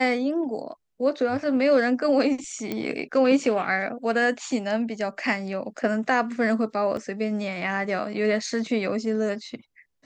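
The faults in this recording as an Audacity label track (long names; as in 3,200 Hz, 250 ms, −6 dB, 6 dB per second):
2.720000	2.720000	click −15 dBFS
6.970000	6.970000	drop-out 2.1 ms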